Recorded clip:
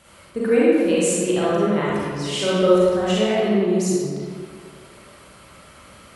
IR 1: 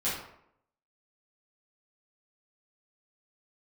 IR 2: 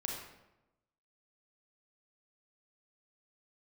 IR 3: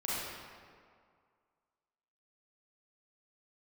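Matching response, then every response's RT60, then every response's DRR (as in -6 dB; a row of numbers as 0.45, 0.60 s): 3; 0.75, 0.95, 2.1 s; -11.0, -1.0, -8.5 dB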